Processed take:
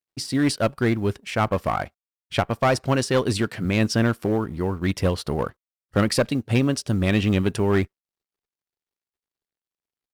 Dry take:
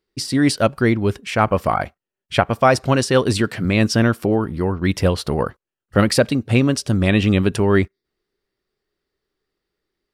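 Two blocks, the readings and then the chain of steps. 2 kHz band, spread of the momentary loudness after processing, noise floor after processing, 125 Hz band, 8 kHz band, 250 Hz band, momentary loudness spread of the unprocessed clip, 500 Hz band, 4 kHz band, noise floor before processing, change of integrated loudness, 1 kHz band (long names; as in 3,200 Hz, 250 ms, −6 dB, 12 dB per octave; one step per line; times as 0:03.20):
−5.5 dB, 6 LU, below −85 dBFS, −4.5 dB, −4.5 dB, −4.5 dB, 7 LU, −5.0 dB, −4.5 dB, below −85 dBFS, −5.0 dB, −5.5 dB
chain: mu-law and A-law mismatch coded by A
asymmetric clip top −13 dBFS
level −4 dB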